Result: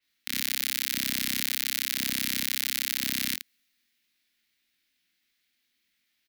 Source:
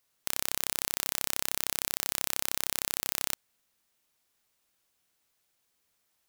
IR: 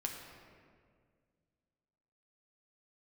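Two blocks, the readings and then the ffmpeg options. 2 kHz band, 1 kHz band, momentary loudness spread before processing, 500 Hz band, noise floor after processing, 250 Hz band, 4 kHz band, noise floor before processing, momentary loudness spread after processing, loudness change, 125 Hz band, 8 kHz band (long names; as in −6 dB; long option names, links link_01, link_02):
+6.0 dB, −7.5 dB, 2 LU, −8.5 dB, −76 dBFS, +2.0 dB, +6.5 dB, −76 dBFS, 4 LU, +3.0 dB, can't be measured, +0.5 dB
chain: -filter_complex "[0:a]equalizer=frequency=125:width_type=o:width=1:gain=-8,equalizer=frequency=250:width_type=o:width=1:gain=11,equalizer=frequency=500:width_type=o:width=1:gain=-9,equalizer=frequency=1000:width_type=o:width=1:gain=-10,equalizer=frequency=2000:width_type=o:width=1:gain=11,equalizer=frequency=4000:width_type=o:width=1:gain=8,equalizer=frequency=8000:width_type=o:width=1:gain=-5,asplit=2[link_01][link_02];[link_02]aecho=0:1:22|76:0.596|0.447[link_03];[link_01][link_03]amix=inputs=2:normalize=0,adynamicequalizer=threshold=0.01:dfrequency=5200:dqfactor=0.7:tfrequency=5200:tqfactor=0.7:attack=5:release=100:ratio=0.375:range=3:mode=boostabove:tftype=highshelf,volume=-4.5dB"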